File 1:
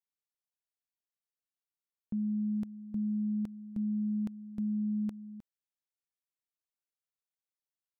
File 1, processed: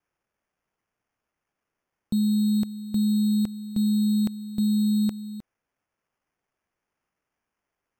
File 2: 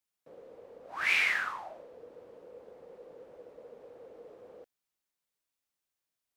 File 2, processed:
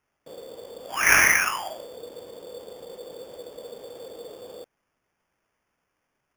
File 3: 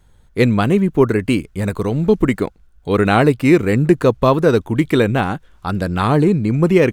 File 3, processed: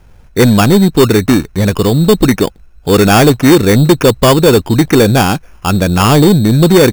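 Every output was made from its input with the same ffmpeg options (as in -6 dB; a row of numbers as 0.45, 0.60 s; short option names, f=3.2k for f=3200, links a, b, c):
-af "acrusher=samples=11:mix=1:aa=0.000001,asoftclip=type=tanh:threshold=-8.5dB,acontrast=83,volume=3dB"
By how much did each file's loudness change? +10.0, +9.5, +7.0 LU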